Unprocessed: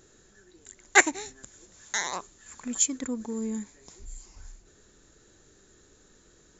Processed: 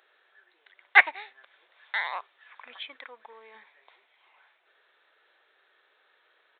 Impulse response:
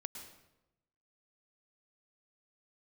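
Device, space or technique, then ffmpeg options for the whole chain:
musical greeting card: -filter_complex "[0:a]aresample=8000,aresample=44100,highpass=f=640:w=0.5412,highpass=f=640:w=1.3066,equalizer=f=2200:t=o:w=0.4:g=4.5,asettb=1/sr,asplit=3[s0][s1][s2];[s0]atrim=end=2.964[s3];[s1]atrim=start=2.96:end=3.55,asetpts=PTS-STARTPTS,afade=t=in:d=0.004:c=qsin,afade=t=out:st=0.586:d=0.004:c=qsin,lowshelf=f=340:g=-9[s4];[s2]atrim=start=3.546[s5];[s3][s4]acrossfade=d=0.004:c1=hsin:c2=qsin[s6];[s6][s5]acrossfade=d=0.004:c1=qsin:c2=hsin,volume=1.12"

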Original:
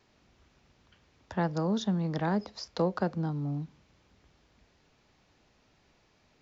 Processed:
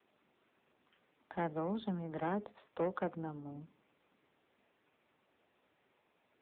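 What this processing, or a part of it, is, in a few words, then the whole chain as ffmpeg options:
telephone: -af "highpass=260,lowpass=3300,asoftclip=type=tanh:threshold=0.0562,volume=0.794" -ar 8000 -c:a libopencore_amrnb -b:a 6700

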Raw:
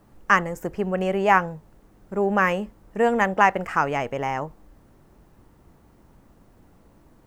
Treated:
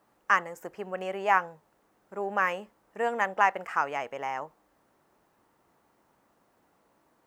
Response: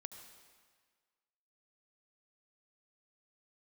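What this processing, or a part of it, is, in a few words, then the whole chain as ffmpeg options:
filter by subtraction: -filter_complex "[0:a]asplit=2[s0][s1];[s1]lowpass=930,volume=-1[s2];[s0][s2]amix=inputs=2:normalize=0,volume=0.447"

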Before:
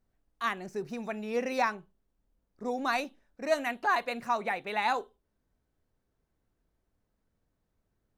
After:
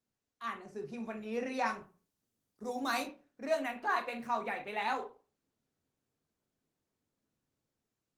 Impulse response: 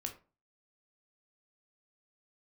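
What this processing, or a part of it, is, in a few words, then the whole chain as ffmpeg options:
far-field microphone of a smart speaker: -filter_complex "[0:a]asplit=3[s0][s1][s2];[s0]afade=t=out:st=1.65:d=0.02[s3];[s1]bass=f=250:g=2,treble=f=4000:g=11,afade=t=in:st=1.65:d=0.02,afade=t=out:st=3.02:d=0.02[s4];[s2]afade=t=in:st=3.02:d=0.02[s5];[s3][s4][s5]amix=inputs=3:normalize=0[s6];[1:a]atrim=start_sample=2205[s7];[s6][s7]afir=irnorm=-1:irlink=0,highpass=f=110:w=0.5412,highpass=f=110:w=1.3066,dynaudnorm=f=170:g=9:m=1.78,volume=0.398" -ar 48000 -c:a libopus -b:a 20k

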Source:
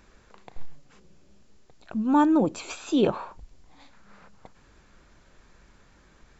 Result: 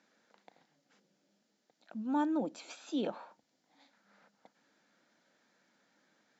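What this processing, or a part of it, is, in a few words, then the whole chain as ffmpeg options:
television speaker: -af "highpass=f=220:w=0.5412,highpass=f=220:w=1.3066,equalizer=f=390:t=q:w=4:g=-10,equalizer=f=1100:t=q:w=4:g=-9,equalizer=f=2600:t=q:w=4:g=-5,lowpass=f=6800:w=0.5412,lowpass=f=6800:w=1.3066,volume=0.355"

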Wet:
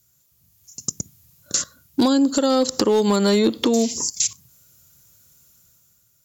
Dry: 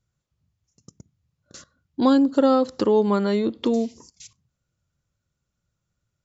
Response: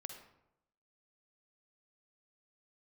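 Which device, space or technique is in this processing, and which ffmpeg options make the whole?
FM broadcast chain: -filter_complex "[0:a]highpass=f=78:p=1,dynaudnorm=f=100:g=13:m=2.51,acrossover=split=920|2600[s0][s1][s2];[s0]acompressor=threshold=0.126:ratio=4[s3];[s1]acompressor=threshold=0.0178:ratio=4[s4];[s2]acompressor=threshold=0.01:ratio=4[s5];[s3][s4][s5]amix=inputs=3:normalize=0,aemphasis=mode=production:type=50fm,alimiter=limit=0.168:level=0:latency=1:release=437,asoftclip=type=hard:threshold=0.133,lowpass=f=15000:w=0.5412,lowpass=f=15000:w=1.3066,aemphasis=mode=production:type=50fm,volume=2.37"

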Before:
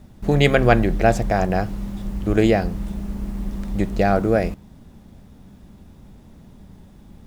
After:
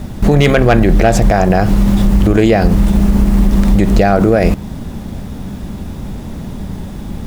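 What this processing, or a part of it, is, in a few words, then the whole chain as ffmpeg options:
loud club master: -af "acompressor=threshold=0.0447:ratio=1.5,asoftclip=type=hard:threshold=0.224,alimiter=level_in=11.9:limit=0.891:release=50:level=0:latency=1,volume=0.891"

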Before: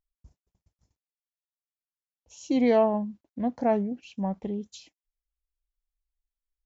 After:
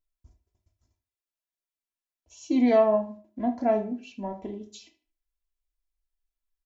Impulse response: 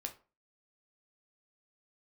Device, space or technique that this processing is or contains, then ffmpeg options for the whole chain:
microphone above a desk: -filter_complex "[0:a]asettb=1/sr,asplit=3[s0][s1][s2];[s0]atrim=end=2.714[s3];[s1]atrim=start=2.71:end=3.46,asetpts=PTS-STARTPTS,afade=t=in:d=0.004:c=qsin,afade=t=out:st=0.746:d=0.004:c=qsin,equalizer=f=1100:t=o:w=2.2:g=4[s4];[s2]atrim=start=3.456[s5];[s3][s4]acrossfade=d=0.004:c1=hsin:c2=qsin[s6];[s6][s5]acrossfade=d=0.004:c1=qsin:c2=hsin,aecho=1:1:3:0.66[s7];[1:a]atrim=start_sample=2205[s8];[s7][s8]afir=irnorm=-1:irlink=0,asplit=2[s9][s10];[s10]adelay=75,lowpass=f=4500:p=1,volume=0.141,asplit=2[s11][s12];[s12]adelay=75,lowpass=f=4500:p=1,volume=0.31,asplit=2[s13][s14];[s14]adelay=75,lowpass=f=4500:p=1,volume=0.31[s15];[s9][s11][s13][s15]amix=inputs=4:normalize=0"

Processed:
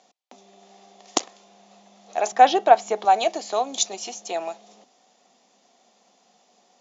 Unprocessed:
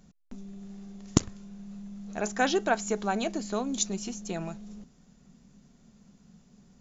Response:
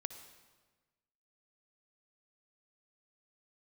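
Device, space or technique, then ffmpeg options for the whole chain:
phone speaker on a table: -filter_complex "[0:a]highpass=f=400:w=0.5412,highpass=f=400:w=1.3066,equalizer=f=410:t=q:w=4:g=-5,equalizer=f=750:t=q:w=4:g=9,equalizer=f=1500:t=q:w=4:g=-8,equalizer=f=3400:t=q:w=4:g=3,lowpass=f=6900:w=0.5412,lowpass=f=6900:w=1.3066,asettb=1/sr,asplit=3[s0][s1][s2];[s0]atrim=end=2.324[s3];[s1]atrim=start=2.32:end=3.05,asetpts=PTS-STARTPTS,afade=t=in:d=0.004:c=qsin,afade=t=out:st=0.726:d=0.004:c=qsin,aemphasis=mode=reproduction:type=bsi[s4];[s2]atrim=start=3.046[s5];[s3][s4]acrossfade=d=0.004:c1=hsin:c2=qsin[s6];[s6][s5]acrossfade=d=0.004:c1=qsin:c2=hsin,volume=2.37"

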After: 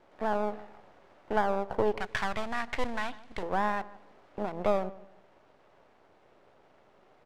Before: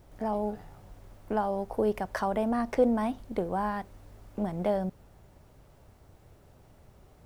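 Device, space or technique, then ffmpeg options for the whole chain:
crystal radio: -filter_complex "[0:a]highpass=390,lowpass=3000,aeval=exprs='if(lt(val(0),0),0.251*val(0),val(0))':c=same,asettb=1/sr,asplit=3[s0][s1][s2];[s0]atrim=end=2.004[s3];[s1]atrim=start=2:end=3.43,asetpts=PTS-STARTPTS,afade=t=in:d=0.004:c=qsin,afade=t=out:st=1.426:d=0.004:c=qsin,equalizer=f=125:t=o:w=1:g=4,equalizer=f=250:t=o:w=1:g=-7,equalizer=f=500:t=o:w=1:g=-11,equalizer=f=1000:t=o:w=1:g=-3,equalizer=f=2000:t=o:w=1:g=4,equalizer=f=4000:t=o:w=1:g=4,equalizer=f=8000:t=o:w=1:g=6[s4];[s2]atrim=start=3.426[s5];[s3][s4]acrossfade=d=0.004:c1=hsin:c2=qsin[s6];[s6][s5]acrossfade=d=0.004:c1=qsin:c2=hsin,asplit=2[s7][s8];[s8]adelay=152,lowpass=f=1300:p=1,volume=0.141,asplit=2[s9][s10];[s10]adelay=152,lowpass=f=1300:p=1,volume=0.3,asplit=2[s11][s12];[s12]adelay=152,lowpass=f=1300:p=1,volume=0.3[s13];[s7][s9][s11][s13]amix=inputs=4:normalize=0,volume=1.88"

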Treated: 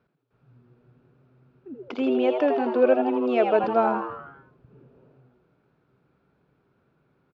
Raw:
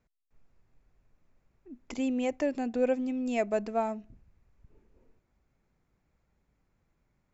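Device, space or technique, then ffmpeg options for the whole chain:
frequency-shifting delay pedal into a guitar cabinet: -filter_complex "[0:a]asplit=8[s0][s1][s2][s3][s4][s5][s6][s7];[s1]adelay=81,afreqshift=120,volume=0.473[s8];[s2]adelay=162,afreqshift=240,volume=0.251[s9];[s3]adelay=243,afreqshift=360,volume=0.133[s10];[s4]adelay=324,afreqshift=480,volume=0.0708[s11];[s5]adelay=405,afreqshift=600,volume=0.0372[s12];[s6]adelay=486,afreqshift=720,volume=0.0197[s13];[s7]adelay=567,afreqshift=840,volume=0.0105[s14];[s0][s8][s9][s10][s11][s12][s13][s14]amix=inputs=8:normalize=0,highpass=110,equalizer=f=130:t=q:w=4:g=5,equalizer=f=410:t=q:w=4:g=6,equalizer=f=1400:t=q:w=4:g=8,equalizer=f=2000:t=q:w=4:g=-8,lowpass=f=4000:w=0.5412,lowpass=f=4000:w=1.3066,asettb=1/sr,asplit=3[s15][s16][s17];[s15]atrim=end=1.884[s18];[s16]atrim=start=1.88:end=3.64,asetpts=PTS-STARTPTS,afade=t=in:d=0.004:c=qsin,afade=t=out:st=1.756:d=0.004:c=qsin,acrossover=split=220 5800:gain=0.224 1 0.251[s19][s20][s21];[s19][s20][s21]amix=inputs=3:normalize=0[s22];[s17]atrim=start=3.636[s23];[s18][s22]acrossfade=d=0.004:c1=hsin:c2=qsin[s24];[s24][s23]acrossfade=d=0.004:c1=qsin:c2=hsin,volume=2.11"

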